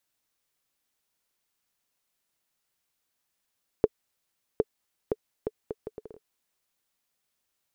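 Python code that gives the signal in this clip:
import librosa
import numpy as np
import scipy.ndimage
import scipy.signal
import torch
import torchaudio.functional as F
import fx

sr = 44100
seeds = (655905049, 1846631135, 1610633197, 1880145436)

y = fx.bouncing_ball(sr, first_gap_s=0.76, ratio=0.68, hz=434.0, decay_ms=39.0, level_db=-7.5)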